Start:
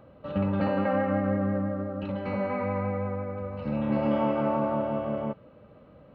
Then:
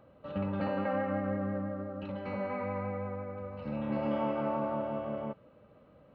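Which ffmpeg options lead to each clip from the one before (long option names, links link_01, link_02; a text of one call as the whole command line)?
ffmpeg -i in.wav -af "lowshelf=frequency=320:gain=-3,volume=-5dB" out.wav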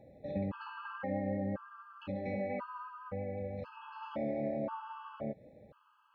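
ffmpeg -i in.wav -af "acompressor=threshold=-37dB:ratio=2,afftfilt=real='re*gt(sin(2*PI*0.96*pts/sr)*(1-2*mod(floor(b*sr/1024/850),2)),0)':imag='im*gt(sin(2*PI*0.96*pts/sr)*(1-2*mod(floor(b*sr/1024/850),2)),0)':win_size=1024:overlap=0.75,volume=2.5dB" out.wav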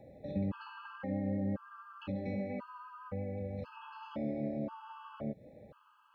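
ffmpeg -i in.wav -filter_complex "[0:a]acrossover=split=430|3000[link_01][link_02][link_03];[link_02]acompressor=threshold=-50dB:ratio=6[link_04];[link_01][link_04][link_03]amix=inputs=3:normalize=0,volume=2.5dB" out.wav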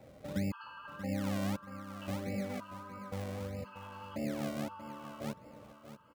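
ffmpeg -i in.wav -filter_complex "[0:a]acrossover=split=390[link_01][link_02];[link_01]acrusher=samples=35:mix=1:aa=0.000001:lfo=1:lforange=35:lforate=1.6[link_03];[link_03][link_02]amix=inputs=2:normalize=0,aecho=1:1:634|1268|1902:0.251|0.0804|0.0257" out.wav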